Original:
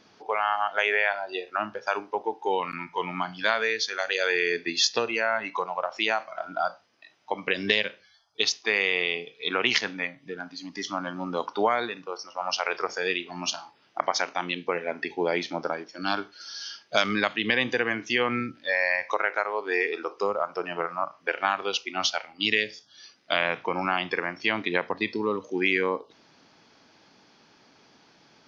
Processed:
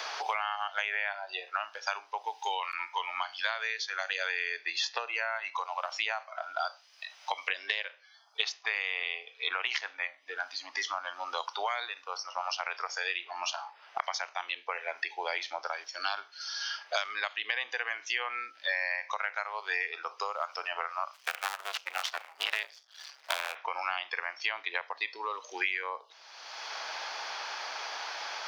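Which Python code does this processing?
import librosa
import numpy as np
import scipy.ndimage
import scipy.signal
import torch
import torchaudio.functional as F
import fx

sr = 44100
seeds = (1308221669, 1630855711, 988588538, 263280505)

y = fx.cycle_switch(x, sr, every=2, mode='muted', at=(21.13, 23.54), fade=0.02)
y = scipy.signal.sosfilt(scipy.signal.butter(4, 680.0, 'highpass', fs=sr, output='sos'), y)
y = fx.band_squash(y, sr, depth_pct=100)
y = F.gain(torch.from_numpy(y), -6.0).numpy()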